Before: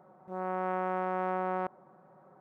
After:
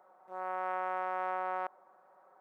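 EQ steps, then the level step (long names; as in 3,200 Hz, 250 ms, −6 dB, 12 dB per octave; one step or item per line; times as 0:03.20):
high-pass filter 660 Hz 12 dB per octave
0.0 dB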